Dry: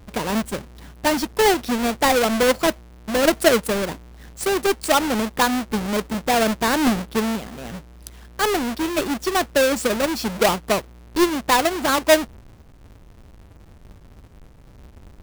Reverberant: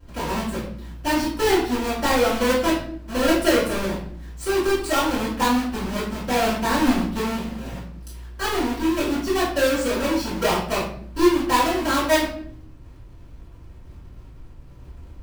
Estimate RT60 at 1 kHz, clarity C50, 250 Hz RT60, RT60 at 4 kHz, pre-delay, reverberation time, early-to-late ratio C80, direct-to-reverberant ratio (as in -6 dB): 0.50 s, 3.5 dB, 0.95 s, 0.45 s, 3 ms, 0.55 s, 8.0 dB, -14.0 dB